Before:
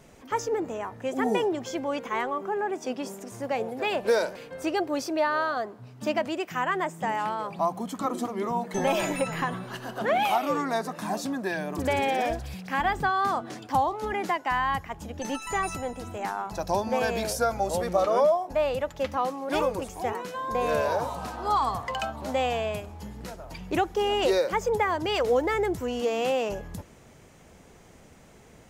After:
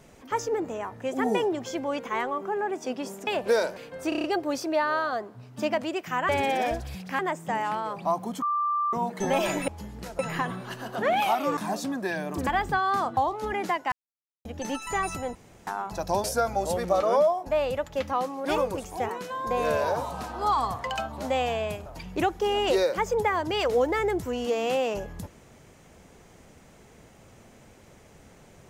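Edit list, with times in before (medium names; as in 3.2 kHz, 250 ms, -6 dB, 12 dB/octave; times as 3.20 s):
3.27–3.86 s: delete
4.68 s: stutter 0.03 s, 6 plays
7.96–8.47 s: bleep 1.18 kHz -23 dBFS
10.60–10.98 s: delete
11.88–12.78 s: move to 6.73 s
13.48–13.77 s: delete
14.52–15.05 s: mute
15.95–16.27 s: room tone
16.84–17.28 s: delete
22.90–23.41 s: move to 9.22 s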